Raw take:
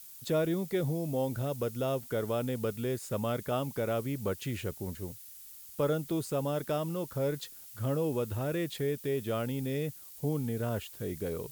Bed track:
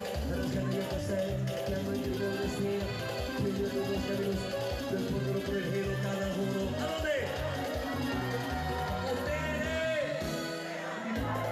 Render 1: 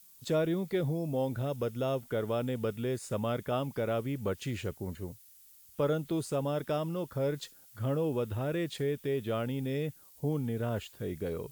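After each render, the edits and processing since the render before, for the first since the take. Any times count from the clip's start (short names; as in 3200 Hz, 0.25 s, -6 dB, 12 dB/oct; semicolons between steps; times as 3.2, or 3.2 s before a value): noise print and reduce 8 dB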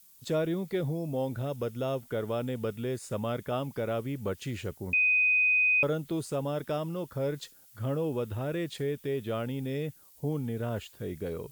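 4.93–5.83 bleep 2500 Hz -21 dBFS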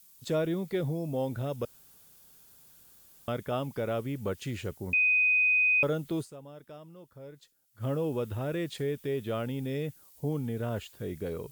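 1.65–3.28 room tone; 6.21–7.84 dip -15.5 dB, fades 0.42 s exponential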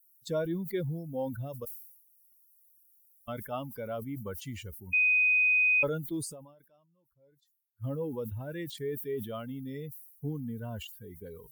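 per-bin expansion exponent 2; sustainer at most 69 dB/s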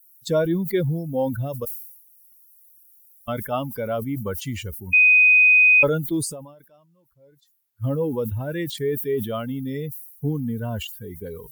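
gain +10.5 dB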